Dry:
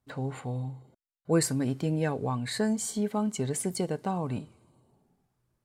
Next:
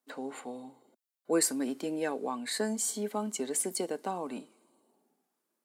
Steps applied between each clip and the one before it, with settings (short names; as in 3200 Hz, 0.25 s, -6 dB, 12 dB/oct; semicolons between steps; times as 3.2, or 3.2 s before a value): steep high-pass 230 Hz 36 dB/oct; high shelf 7200 Hz +8 dB; gain -2 dB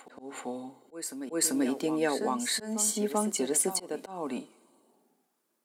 reverse echo 0.389 s -10.5 dB; auto swell 0.213 s; gain +4.5 dB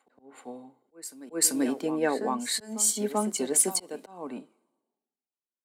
three-band expander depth 70%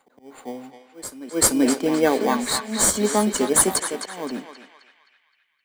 in parallel at -7 dB: sample-rate reducer 2700 Hz, jitter 0%; on the sum: narrowing echo 0.26 s, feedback 57%, band-pass 2300 Hz, level -4 dB; gain +5 dB